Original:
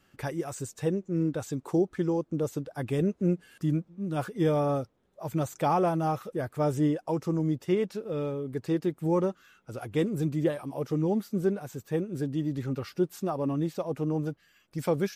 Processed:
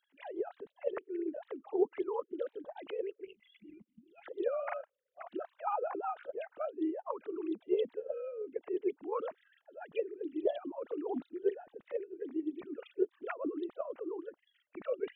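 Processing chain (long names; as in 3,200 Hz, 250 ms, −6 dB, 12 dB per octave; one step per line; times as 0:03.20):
three sine waves on the formant tracks
formants moved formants +3 semitones
gain on a spectral selection 0:03.25–0:04.24, 220–2,000 Hz −18 dB
level −5.5 dB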